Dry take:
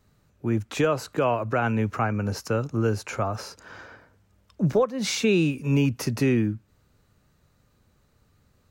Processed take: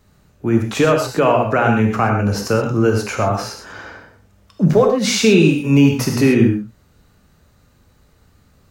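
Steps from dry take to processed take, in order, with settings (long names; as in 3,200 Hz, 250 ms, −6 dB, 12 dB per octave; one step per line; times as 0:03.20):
reverb whose tail is shaped and stops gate 150 ms flat, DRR 2 dB
level +7.5 dB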